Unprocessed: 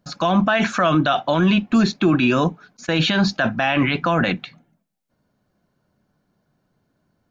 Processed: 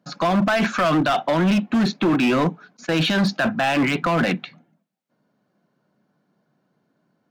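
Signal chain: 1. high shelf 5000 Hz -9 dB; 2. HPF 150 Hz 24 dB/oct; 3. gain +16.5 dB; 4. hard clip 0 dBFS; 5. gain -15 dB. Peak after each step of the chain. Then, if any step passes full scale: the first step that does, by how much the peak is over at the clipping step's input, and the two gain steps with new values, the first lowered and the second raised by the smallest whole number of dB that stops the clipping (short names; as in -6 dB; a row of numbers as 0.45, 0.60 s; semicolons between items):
-7.5, -7.0, +9.5, 0.0, -15.0 dBFS; step 3, 9.5 dB; step 3 +6.5 dB, step 5 -5 dB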